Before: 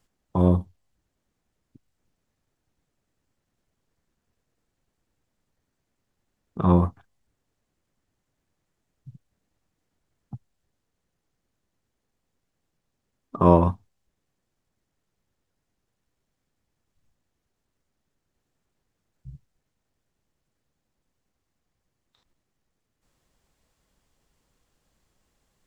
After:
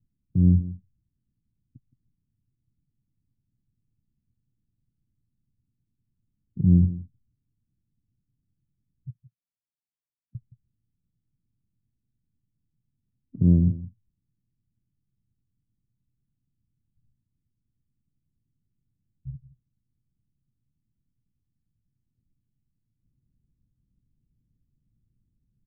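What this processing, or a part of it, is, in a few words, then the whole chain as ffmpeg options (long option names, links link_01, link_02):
the neighbour's flat through the wall: -filter_complex "[0:a]asettb=1/sr,asplit=3[link_01][link_02][link_03];[link_01]atrim=end=9.104[link_04];[link_02]atrim=start=9.1:end=10.35,asetpts=PTS-STARTPTS,afade=type=in:duration=0.004:curve=qsin,afade=type=out:start_time=1.246:duration=0.004:curve=qsin,aderivative[link_05];[link_03]atrim=start=10.346[link_06];[link_04][link_05]acrossfade=duration=0.004:curve1=hsin:curve2=qsin[link_07];[link_07][link_06]acrossfade=duration=0.004:curve1=qsin:curve2=hsin,lowpass=frequency=250:width=0.5412,lowpass=frequency=250:width=1.3066,equalizer=frequency=120:width_type=o:width=0.64:gain=8,aecho=1:1:169:0.158"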